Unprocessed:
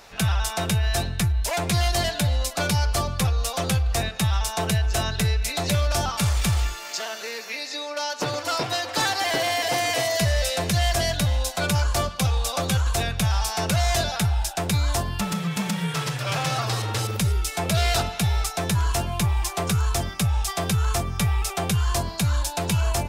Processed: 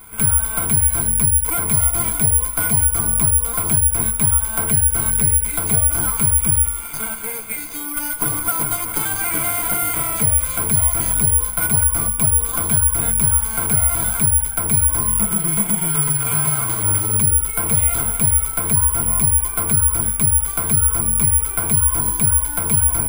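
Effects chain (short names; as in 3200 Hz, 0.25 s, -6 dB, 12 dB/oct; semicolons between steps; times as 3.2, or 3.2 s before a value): minimum comb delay 0.81 ms; ripple EQ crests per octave 1.8, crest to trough 13 dB; compressor, threshold -23 dBFS, peak gain reduction 7.5 dB; air absorption 420 m; careless resampling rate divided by 4×, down none, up zero stuff; gain +4.5 dB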